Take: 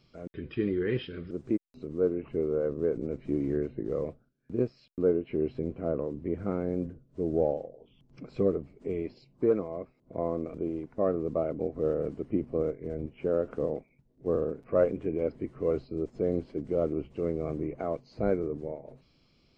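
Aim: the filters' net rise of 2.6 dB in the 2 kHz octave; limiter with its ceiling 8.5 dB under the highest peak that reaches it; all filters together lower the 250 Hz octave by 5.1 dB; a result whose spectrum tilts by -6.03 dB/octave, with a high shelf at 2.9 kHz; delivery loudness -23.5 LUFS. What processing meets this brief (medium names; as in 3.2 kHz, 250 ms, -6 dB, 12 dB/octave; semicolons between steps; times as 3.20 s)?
peaking EQ 250 Hz -7.5 dB; peaking EQ 2 kHz +6.5 dB; treble shelf 2.9 kHz -8.5 dB; trim +12 dB; peak limiter -10.5 dBFS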